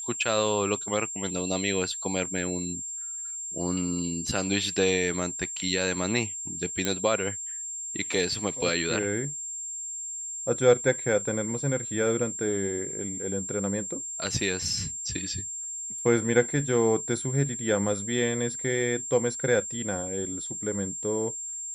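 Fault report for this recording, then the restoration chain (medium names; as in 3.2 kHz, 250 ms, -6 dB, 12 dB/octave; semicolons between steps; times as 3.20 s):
whine 7.4 kHz -33 dBFS
6.85 s: pop -10 dBFS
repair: de-click; band-stop 7.4 kHz, Q 30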